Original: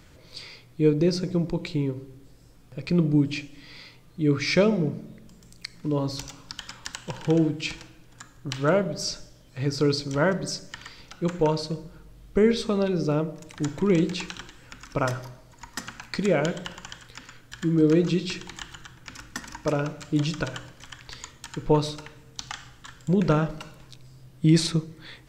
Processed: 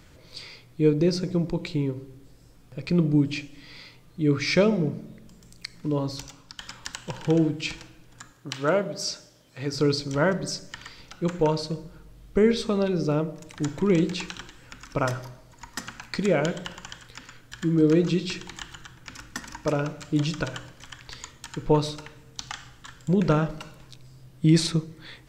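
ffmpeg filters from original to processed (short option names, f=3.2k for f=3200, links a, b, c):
-filter_complex "[0:a]asettb=1/sr,asplit=3[a][b][c];[a]atrim=end=8.324[d];[b]atrim=start=8.32:end=9.74,asetpts=PTS-STARTPTS,afade=t=in:d=0.004:c=qsin,afade=t=out:st=1.416:d=0.004:c=qsin,highpass=f=250:p=1[e];[c]atrim=start=9.736[f];[d][e]acrossfade=d=0.004:c1=hsin:c2=qsin[g];[g][f]acrossfade=d=0.004:c1=qsin:c2=hsin,asplit=2[h][i];[h]atrim=end=6.59,asetpts=PTS-STARTPTS,afade=t=out:st=5.9:d=0.69:silence=0.446684[j];[i]atrim=start=6.59,asetpts=PTS-STARTPTS,afade=t=in:d=0.004:c=hsin:silence=0.446684[k];[j][k]concat=n=2:v=0:a=1"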